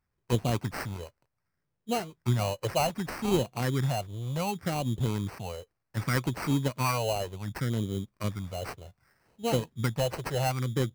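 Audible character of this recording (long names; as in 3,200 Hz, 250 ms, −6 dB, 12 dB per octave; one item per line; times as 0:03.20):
phaser sweep stages 4, 0.66 Hz, lowest notch 230–1,600 Hz
aliases and images of a low sample rate 3,500 Hz, jitter 0%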